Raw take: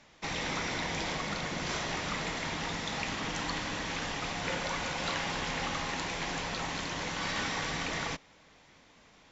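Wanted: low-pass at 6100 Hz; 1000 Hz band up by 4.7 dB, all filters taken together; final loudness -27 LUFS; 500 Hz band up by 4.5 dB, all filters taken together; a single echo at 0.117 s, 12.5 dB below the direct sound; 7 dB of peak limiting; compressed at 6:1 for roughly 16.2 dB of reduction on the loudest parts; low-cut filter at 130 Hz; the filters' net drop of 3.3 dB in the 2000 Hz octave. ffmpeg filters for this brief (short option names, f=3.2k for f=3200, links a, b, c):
-af "highpass=130,lowpass=6.1k,equalizer=f=500:t=o:g=4,equalizer=f=1k:t=o:g=6,equalizer=f=2k:t=o:g=-6,acompressor=threshold=-47dB:ratio=6,alimiter=level_in=17.5dB:limit=-24dB:level=0:latency=1,volume=-17.5dB,aecho=1:1:117:0.237,volume=23.5dB"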